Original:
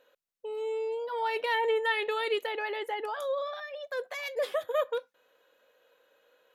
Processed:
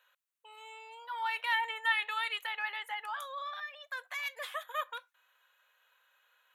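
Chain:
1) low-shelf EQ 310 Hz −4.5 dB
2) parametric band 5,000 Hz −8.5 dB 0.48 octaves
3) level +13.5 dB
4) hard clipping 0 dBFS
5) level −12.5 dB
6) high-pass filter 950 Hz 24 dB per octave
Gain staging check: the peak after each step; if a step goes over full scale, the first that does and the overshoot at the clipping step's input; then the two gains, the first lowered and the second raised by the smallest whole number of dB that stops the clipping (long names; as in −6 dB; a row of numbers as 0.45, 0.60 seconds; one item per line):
−17.0, −17.0, −3.5, −3.5, −16.0, −18.5 dBFS
no step passes full scale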